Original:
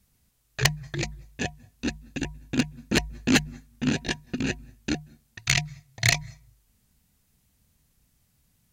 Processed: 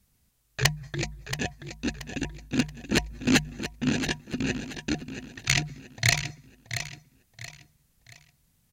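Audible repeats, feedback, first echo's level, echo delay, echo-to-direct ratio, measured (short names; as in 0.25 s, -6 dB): 3, 34%, -10.0 dB, 0.678 s, -9.5 dB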